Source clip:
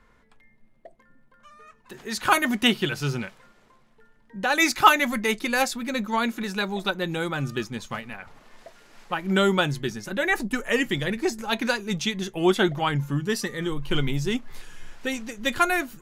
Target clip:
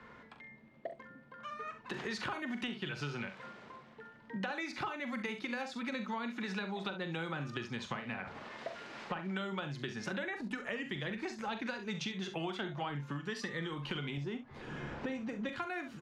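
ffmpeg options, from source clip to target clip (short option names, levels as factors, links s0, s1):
-filter_complex "[0:a]highpass=110,lowpass=3900,asettb=1/sr,asplit=3[s0][s1][s2];[s0]atrim=end=14.174[s3];[s1]atrim=start=14.17:end=15.49,asetpts=PTS-STARTPTS,afade=t=in:d=0.004:c=qsin,afade=t=out:st=1.316:d=0.004:c=qsin,tiltshelf=f=1200:g=9.5[s4];[s2]atrim=start=15.486[s5];[s3][s4]acrossfade=d=0.004:c1=hsin:c2=qsin[s6];[s6][s5]acrossfade=d=0.004:c1=qsin:c2=hsin,acompressor=threshold=0.0126:ratio=4,asplit=2[s7][s8];[s8]aecho=0:1:42|67:0.316|0.224[s9];[s7][s9]amix=inputs=2:normalize=0,acrossover=split=160|670[s10][s11][s12];[s10]acompressor=threshold=0.00251:ratio=4[s13];[s11]acompressor=threshold=0.00316:ratio=4[s14];[s12]acompressor=threshold=0.00501:ratio=4[s15];[s13][s14][s15]amix=inputs=3:normalize=0,volume=2.11"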